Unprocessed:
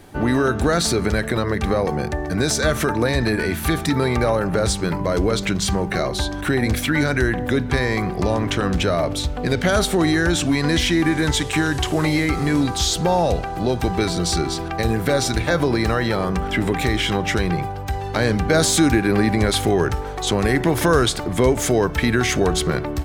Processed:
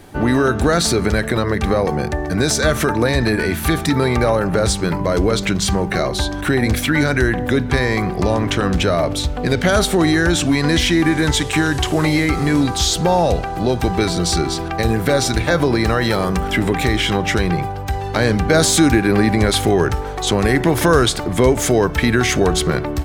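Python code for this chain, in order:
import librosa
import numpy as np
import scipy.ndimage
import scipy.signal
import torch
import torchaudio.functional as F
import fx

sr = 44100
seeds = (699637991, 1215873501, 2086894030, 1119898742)

y = fx.high_shelf(x, sr, hz=fx.line((16.01, 4200.0), (16.59, 7800.0)), db=8.0, at=(16.01, 16.59), fade=0.02)
y = y * 10.0 ** (3.0 / 20.0)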